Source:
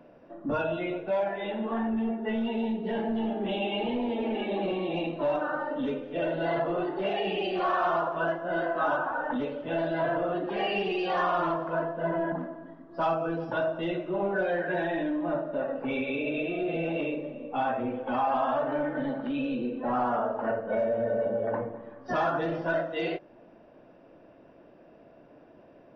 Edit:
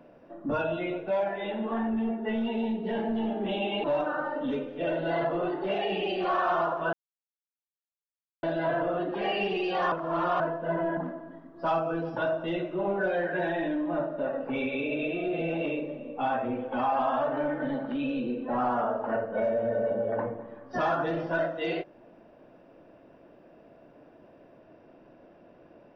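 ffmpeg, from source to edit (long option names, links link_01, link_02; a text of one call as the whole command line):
ffmpeg -i in.wav -filter_complex "[0:a]asplit=6[link_01][link_02][link_03][link_04][link_05][link_06];[link_01]atrim=end=3.842[link_07];[link_02]atrim=start=5.188:end=8.28,asetpts=PTS-STARTPTS,afade=type=out:start_time=3.088:duration=0.004:curve=hsin[link_08];[link_03]atrim=start=8.28:end=9.78,asetpts=PTS-STARTPTS,volume=0[link_09];[link_04]atrim=start=9.78:end=11.272,asetpts=PTS-STARTPTS,afade=type=in:duration=0.004:curve=hsin[link_10];[link_05]atrim=start=11.268:end=11.752,asetpts=PTS-STARTPTS,areverse[link_11];[link_06]atrim=start=11.748[link_12];[link_08][link_09][link_10]concat=n=3:v=0:a=1[link_13];[link_07][link_13]acrossfade=duration=0.004:curve1=hsin:curve2=hsin[link_14];[link_14][link_11]acrossfade=duration=0.004:curve1=hsin:curve2=hsin[link_15];[link_15][link_12]acrossfade=duration=0.004:curve1=hsin:curve2=hsin" out.wav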